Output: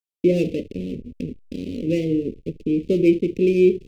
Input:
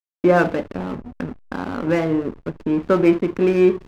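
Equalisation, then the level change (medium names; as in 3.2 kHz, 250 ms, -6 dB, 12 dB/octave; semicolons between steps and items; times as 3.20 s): elliptic band-stop 470–2500 Hz, stop band 40 dB; 0.0 dB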